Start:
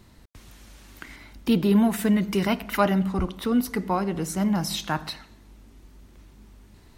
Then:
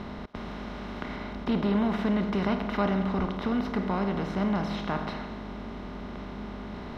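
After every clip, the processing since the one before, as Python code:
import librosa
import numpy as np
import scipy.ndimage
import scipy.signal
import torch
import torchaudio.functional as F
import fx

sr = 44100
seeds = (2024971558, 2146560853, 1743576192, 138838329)

y = fx.bin_compress(x, sr, power=0.4)
y = fx.air_absorb(y, sr, metres=250.0)
y = y * librosa.db_to_amplitude(-8.5)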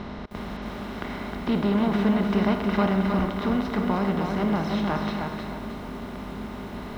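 y = fx.echo_crushed(x, sr, ms=311, feedback_pct=35, bits=9, wet_db=-5.0)
y = y * librosa.db_to_amplitude(2.5)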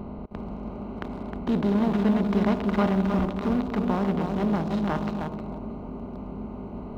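y = fx.wiener(x, sr, points=25)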